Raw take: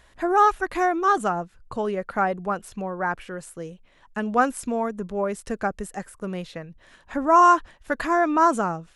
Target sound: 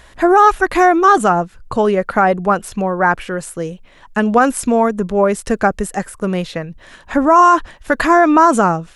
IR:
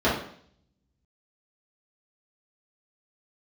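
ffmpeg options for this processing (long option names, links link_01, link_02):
-af "alimiter=level_in=13dB:limit=-1dB:release=50:level=0:latency=1,volume=-1dB"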